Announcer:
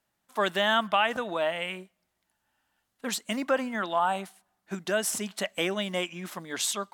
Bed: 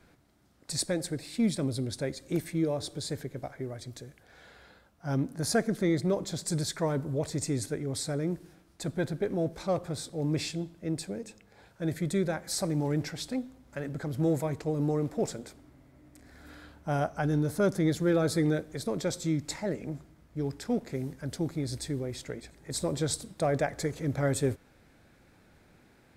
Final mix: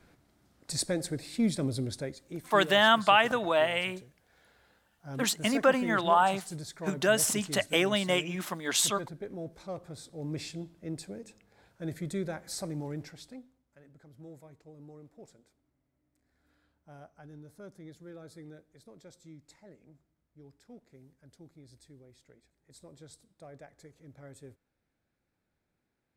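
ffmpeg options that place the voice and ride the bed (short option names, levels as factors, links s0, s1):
-filter_complex "[0:a]adelay=2150,volume=1.33[s0];[1:a]volume=1.58,afade=t=out:st=1.87:d=0.36:silence=0.334965,afade=t=in:st=9.85:d=0.72:silence=0.595662,afade=t=out:st=12.52:d=1.14:silence=0.149624[s1];[s0][s1]amix=inputs=2:normalize=0"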